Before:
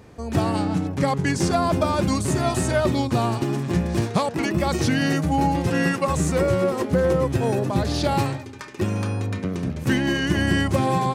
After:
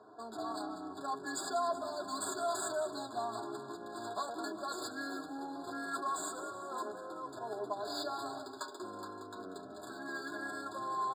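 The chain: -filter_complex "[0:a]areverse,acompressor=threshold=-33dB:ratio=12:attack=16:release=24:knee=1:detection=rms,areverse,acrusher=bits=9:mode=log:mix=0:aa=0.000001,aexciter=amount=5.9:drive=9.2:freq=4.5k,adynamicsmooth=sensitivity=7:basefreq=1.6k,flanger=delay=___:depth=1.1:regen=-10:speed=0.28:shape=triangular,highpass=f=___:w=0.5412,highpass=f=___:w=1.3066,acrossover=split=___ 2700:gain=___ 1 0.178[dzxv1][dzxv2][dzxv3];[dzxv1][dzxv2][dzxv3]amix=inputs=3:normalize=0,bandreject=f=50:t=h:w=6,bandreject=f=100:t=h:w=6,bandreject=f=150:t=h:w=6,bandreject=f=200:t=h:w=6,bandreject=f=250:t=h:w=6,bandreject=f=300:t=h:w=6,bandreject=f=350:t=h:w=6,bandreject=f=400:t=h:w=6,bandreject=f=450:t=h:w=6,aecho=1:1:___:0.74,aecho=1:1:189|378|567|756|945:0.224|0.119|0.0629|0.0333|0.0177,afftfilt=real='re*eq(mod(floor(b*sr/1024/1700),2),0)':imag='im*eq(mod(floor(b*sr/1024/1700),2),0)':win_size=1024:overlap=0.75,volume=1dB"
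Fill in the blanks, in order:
9.4, 150, 150, 470, 0.2, 2.9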